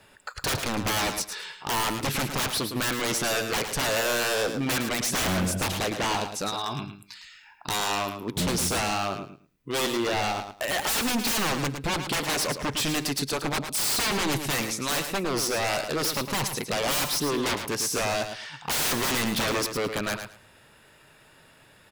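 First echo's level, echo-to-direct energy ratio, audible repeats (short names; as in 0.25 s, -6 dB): -8.0 dB, -8.0 dB, 2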